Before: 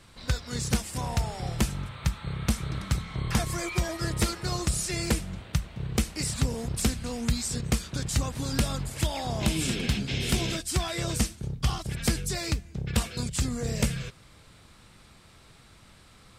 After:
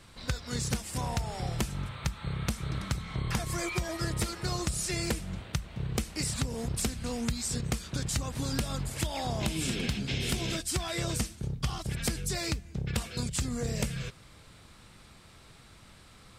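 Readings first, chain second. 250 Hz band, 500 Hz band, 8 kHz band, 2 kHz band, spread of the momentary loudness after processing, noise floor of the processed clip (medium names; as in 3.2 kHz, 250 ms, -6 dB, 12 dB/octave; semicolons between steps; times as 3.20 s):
-3.5 dB, -2.5 dB, -2.5 dB, -2.5 dB, 4 LU, -55 dBFS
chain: compression, threshold -27 dBFS, peak gain reduction 8.5 dB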